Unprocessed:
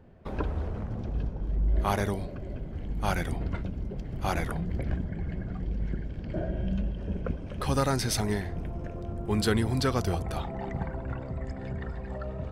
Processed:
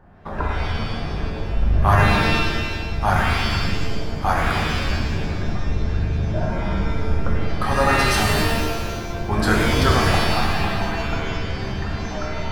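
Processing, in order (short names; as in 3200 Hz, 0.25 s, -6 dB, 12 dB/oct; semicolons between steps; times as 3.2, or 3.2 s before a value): octaver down 2 oct, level 0 dB; band shelf 1100 Hz +9.5 dB; shimmer reverb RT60 1.3 s, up +7 st, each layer -2 dB, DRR -0.5 dB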